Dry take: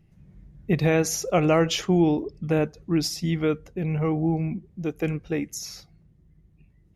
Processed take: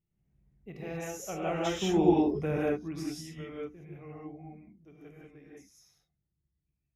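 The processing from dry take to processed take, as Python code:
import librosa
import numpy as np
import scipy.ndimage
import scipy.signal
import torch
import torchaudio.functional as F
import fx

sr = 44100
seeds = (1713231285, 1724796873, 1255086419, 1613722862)

y = fx.doppler_pass(x, sr, speed_mps=13, closest_m=2.5, pass_at_s=2.16)
y = fx.peak_eq(y, sr, hz=4500.0, db=-14.5, octaves=0.22)
y = fx.hum_notches(y, sr, base_hz=60, count=5)
y = fx.rev_gated(y, sr, seeds[0], gate_ms=210, shape='rising', drr_db=-5.5)
y = F.gain(torch.from_numpy(y), -4.5).numpy()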